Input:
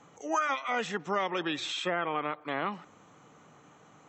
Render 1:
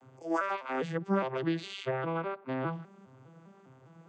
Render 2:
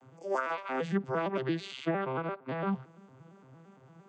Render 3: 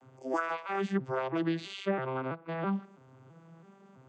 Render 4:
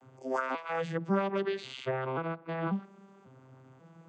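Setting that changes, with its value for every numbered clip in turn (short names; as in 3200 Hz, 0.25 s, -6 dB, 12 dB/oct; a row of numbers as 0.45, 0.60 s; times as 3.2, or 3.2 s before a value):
arpeggiated vocoder, a note every: 0.203, 0.114, 0.329, 0.541 s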